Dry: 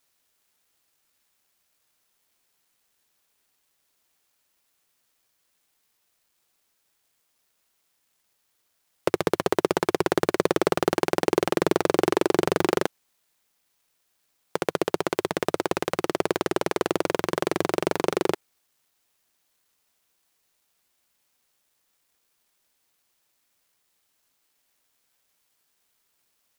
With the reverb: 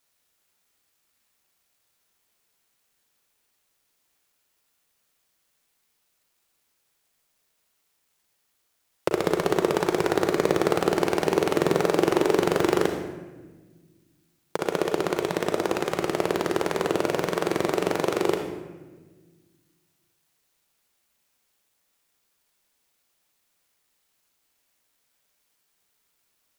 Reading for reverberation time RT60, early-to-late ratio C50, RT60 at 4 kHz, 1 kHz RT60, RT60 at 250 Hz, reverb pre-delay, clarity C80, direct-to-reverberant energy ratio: 1.4 s, 5.0 dB, 0.85 s, 1.2 s, 2.3 s, 37 ms, 8.0 dB, 3.5 dB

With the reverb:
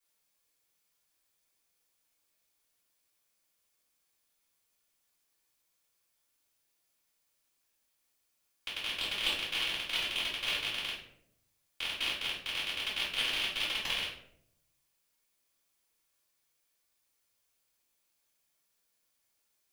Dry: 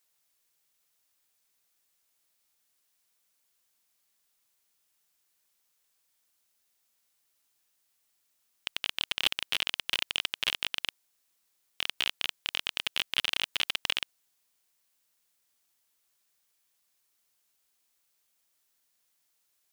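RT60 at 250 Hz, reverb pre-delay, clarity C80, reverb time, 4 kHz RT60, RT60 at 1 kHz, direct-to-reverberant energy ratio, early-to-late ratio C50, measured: 1.0 s, 3 ms, 7.5 dB, 0.70 s, 0.40 s, 0.60 s, -12.0 dB, 3.5 dB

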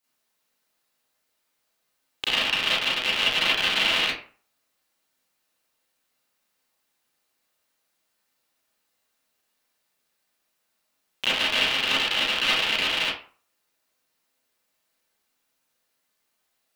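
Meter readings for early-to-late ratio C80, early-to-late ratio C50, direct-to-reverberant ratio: 7.5 dB, 0.5 dB, -9.5 dB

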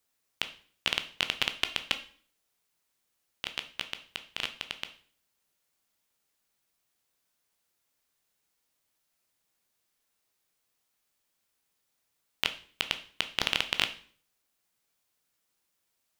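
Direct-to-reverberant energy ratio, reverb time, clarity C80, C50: 8.0 dB, 0.50 s, 17.5 dB, 13.5 dB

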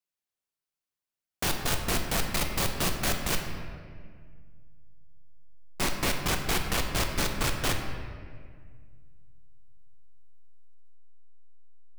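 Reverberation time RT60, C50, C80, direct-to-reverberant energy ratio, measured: 1.9 s, 5.0 dB, 6.5 dB, 3.0 dB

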